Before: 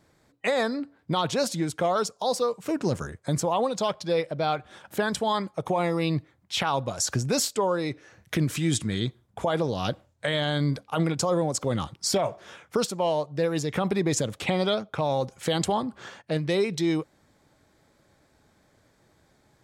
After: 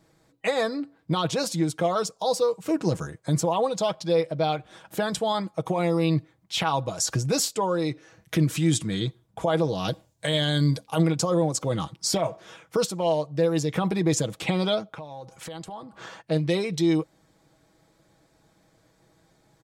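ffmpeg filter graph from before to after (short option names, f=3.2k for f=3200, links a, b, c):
-filter_complex "[0:a]asettb=1/sr,asplit=3[a][b][c];[a]atrim=end=9.884[d];[b]atrim=start=9.88:end=11.02,asetpts=PTS-STARTPTS,afade=t=in:d=0.004:c=qsin,afade=t=out:st=1.136:d=0.004:c=qsin,bass=f=250:g=1,treble=f=4k:g=8,bandreject=f=1.3k:w=11[e];[c]atrim=start=11.016[f];[d][e]acrossfade=d=0.004:c1=hsin:c2=qsin[g];[g][f]acrossfade=d=0.004:c1=qsin:c2=hsin,asettb=1/sr,asplit=3[h][i][j];[h]atrim=end=14.914[k];[i]atrim=start=14.91:end=16.21,asetpts=PTS-STARTPTS,afade=t=in:d=0.004:c=qsin,afade=t=out:st=1.296:d=0.004:c=qsin,acompressor=threshold=-37dB:ratio=16:attack=3.2:release=140:knee=1:detection=peak,equalizer=f=1.1k:t=o:w=2:g=4.5[l];[j]atrim=start=16.206[m];[k][l]acrossfade=d=0.004:c1=hsin:c2=qsin[n];[n][m]acrossfade=d=0.004:c1=qsin:c2=hsin,equalizer=f=1.7k:w=1.5:g=-3,aecho=1:1:6.2:0.51"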